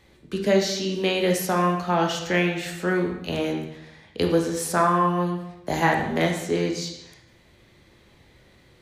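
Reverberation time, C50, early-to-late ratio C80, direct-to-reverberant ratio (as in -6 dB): 0.85 s, 5.0 dB, 8.0 dB, 1.5 dB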